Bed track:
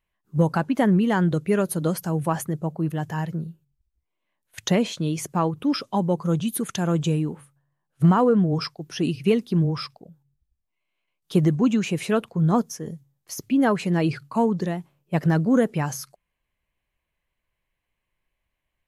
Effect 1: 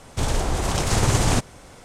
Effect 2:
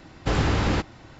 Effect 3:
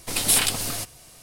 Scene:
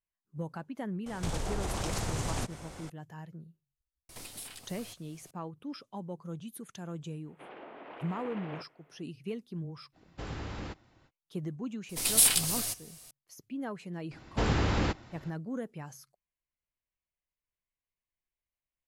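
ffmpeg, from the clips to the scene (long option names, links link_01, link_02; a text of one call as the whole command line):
ffmpeg -i bed.wav -i cue0.wav -i cue1.wav -i cue2.wav -filter_complex "[1:a]asplit=2[link_01][link_02];[3:a]asplit=2[link_03][link_04];[2:a]asplit=2[link_05][link_06];[0:a]volume=-18dB[link_07];[link_01]acompressor=threshold=-28dB:ratio=6:attack=3.2:release=140:knee=1:detection=peak[link_08];[link_03]acompressor=threshold=-35dB:ratio=5:attack=0.27:release=590:knee=1:detection=rms[link_09];[link_02]highpass=frequency=370:width_type=q:width=0.5412,highpass=frequency=370:width_type=q:width=1.307,lowpass=frequency=2900:width_type=q:width=0.5176,lowpass=frequency=2900:width_type=q:width=0.7071,lowpass=frequency=2900:width_type=q:width=1.932,afreqshift=-85[link_10];[link_04]highshelf=frequency=3600:gain=9[link_11];[link_08]atrim=end=1.84,asetpts=PTS-STARTPTS,volume=-2dB,afade=type=in:duration=0.004:curve=hsin,afade=type=out:start_time=1.836:duration=0.004:curve=hsin,adelay=1060[link_12];[link_09]atrim=end=1.22,asetpts=PTS-STARTPTS,volume=-4dB,afade=type=in:duration=0.004:curve=hsin,afade=type=out:start_time=1.216:duration=0.004:curve=hsin,adelay=180369S[link_13];[link_10]atrim=end=1.84,asetpts=PTS-STARTPTS,volume=-18dB,afade=type=in:duration=0.1,afade=type=out:start_time=1.74:duration=0.1,adelay=318402S[link_14];[link_05]atrim=end=1.19,asetpts=PTS-STARTPTS,volume=-17dB,afade=type=in:duration=0.05,afade=type=out:start_time=1.14:duration=0.05,adelay=9920[link_15];[link_11]atrim=end=1.22,asetpts=PTS-STARTPTS,volume=-10dB,afade=type=in:duration=0.004:curve=hsin,afade=type=out:start_time=1.216:duration=0.004:curve=hsin,adelay=11890[link_16];[link_06]atrim=end=1.19,asetpts=PTS-STARTPTS,volume=-5.5dB,afade=type=in:duration=0.004:curve=hsin,afade=type=out:start_time=1.186:duration=0.004:curve=hsin,adelay=14110[link_17];[link_07][link_12][link_13][link_14][link_15][link_16][link_17]amix=inputs=7:normalize=0" out.wav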